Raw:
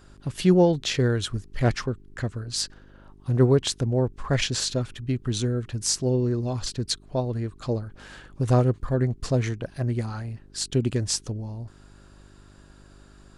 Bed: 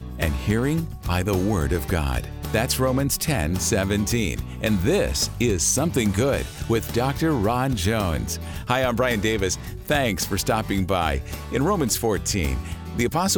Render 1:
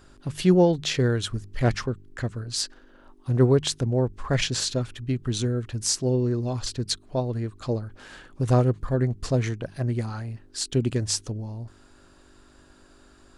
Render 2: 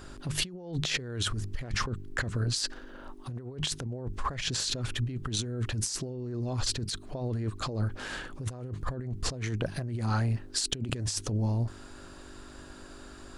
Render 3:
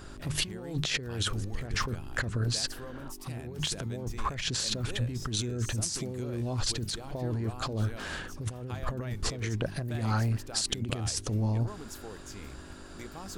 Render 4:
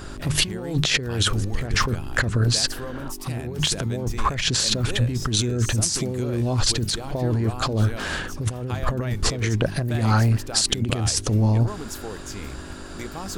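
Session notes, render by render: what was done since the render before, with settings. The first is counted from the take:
de-hum 50 Hz, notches 4
compressor with a negative ratio -33 dBFS, ratio -1
add bed -22.5 dB
trim +9.5 dB; peak limiter -3 dBFS, peak gain reduction 1.5 dB

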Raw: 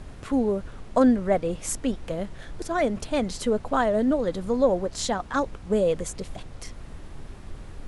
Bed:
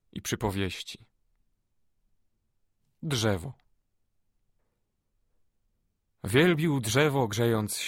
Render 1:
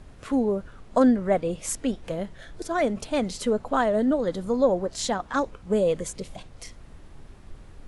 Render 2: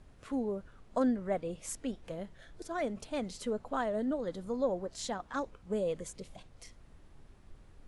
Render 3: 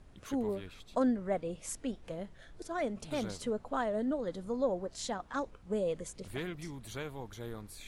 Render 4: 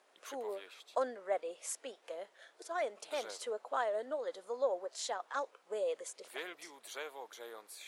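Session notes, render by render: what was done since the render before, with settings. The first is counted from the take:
noise print and reduce 6 dB
trim -10.5 dB
add bed -17.5 dB
high-pass 470 Hz 24 dB/octave

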